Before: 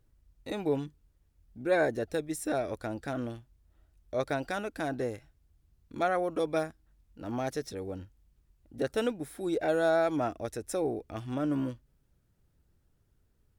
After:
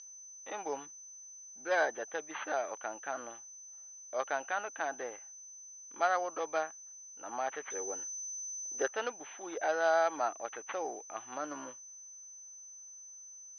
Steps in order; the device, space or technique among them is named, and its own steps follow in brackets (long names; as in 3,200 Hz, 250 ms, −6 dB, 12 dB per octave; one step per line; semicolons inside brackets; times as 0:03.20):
toy sound module (linearly interpolated sample-rate reduction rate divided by 6×; switching amplifier with a slow clock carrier 6,100 Hz; loudspeaker in its box 740–4,600 Hz, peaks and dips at 830 Hz +6 dB, 1,200 Hz +4 dB, 1,700 Hz +3 dB, 3,000 Hz +7 dB, 4,400 Hz +5 dB)
0:07.70–0:08.88: graphic EQ with 15 bands 400 Hz +10 dB, 1,600 Hz +4 dB, 6,300 Hz +10 dB